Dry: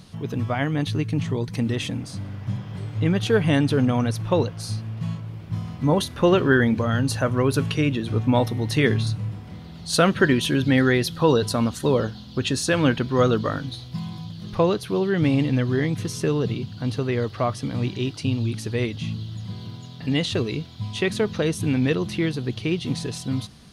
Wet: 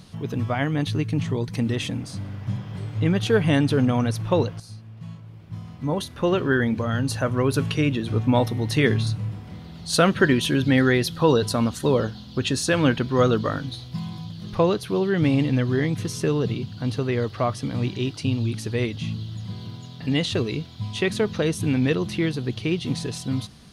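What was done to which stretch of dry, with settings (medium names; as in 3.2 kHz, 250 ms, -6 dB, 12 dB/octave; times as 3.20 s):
4.60–7.85 s: fade in, from -13 dB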